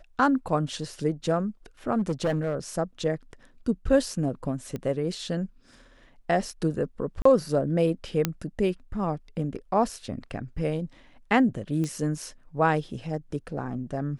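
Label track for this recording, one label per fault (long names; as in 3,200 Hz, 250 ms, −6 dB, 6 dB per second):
1.980000	2.550000	clipping −21 dBFS
4.760000	4.760000	click −21 dBFS
7.220000	7.250000	drop-out 34 ms
8.250000	8.250000	click −8 dBFS
11.840000	11.840000	click −19 dBFS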